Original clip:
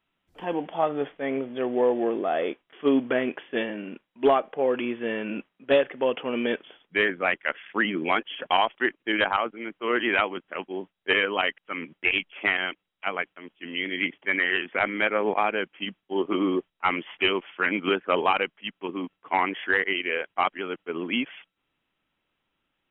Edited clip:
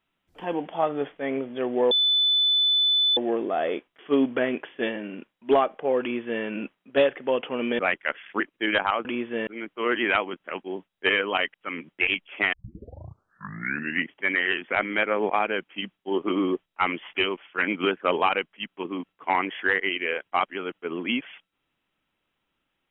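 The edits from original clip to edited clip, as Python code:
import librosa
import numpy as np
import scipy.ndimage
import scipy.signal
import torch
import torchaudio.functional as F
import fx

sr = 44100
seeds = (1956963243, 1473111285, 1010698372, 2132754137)

y = fx.edit(x, sr, fx.insert_tone(at_s=1.91, length_s=1.26, hz=3500.0, db=-18.0),
    fx.duplicate(start_s=4.75, length_s=0.42, to_s=9.51),
    fx.cut(start_s=6.53, length_s=0.66),
    fx.cut(start_s=7.8, length_s=1.06),
    fx.tape_start(start_s=12.57, length_s=1.6),
    fx.fade_out_to(start_s=17.11, length_s=0.51, floor_db=-6.5), tone=tone)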